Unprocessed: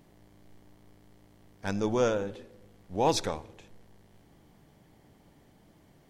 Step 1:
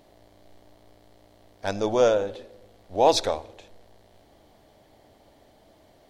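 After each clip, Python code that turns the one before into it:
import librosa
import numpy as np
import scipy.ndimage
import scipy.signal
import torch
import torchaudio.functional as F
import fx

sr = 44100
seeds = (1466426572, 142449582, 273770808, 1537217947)

y = fx.graphic_eq_15(x, sr, hz=(160, 630, 4000), db=(-11, 10, 7))
y = y * librosa.db_to_amplitude(2.0)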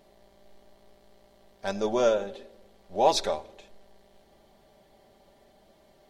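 y = x + 0.61 * np.pad(x, (int(5.1 * sr / 1000.0), 0))[:len(x)]
y = y * librosa.db_to_amplitude(-4.0)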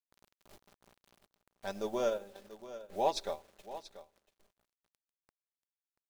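y = fx.quant_dither(x, sr, seeds[0], bits=8, dither='none')
y = y + 10.0 ** (-14.5 / 20.0) * np.pad(y, (int(685 * sr / 1000.0), 0))[:len(y)]
y = fx.transient(y, sr, attack_db=1, sustain_db=-7)
y = y * librosa.db_to_amplitude(-9.0)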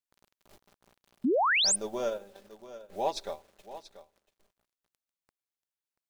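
y = fx.spec_paint(x, sr, seeds[1], shape='rise', start_s=1.24, length_s=0.52, low_hz=220.0, high_hz=10000.0, level_db=-25.0)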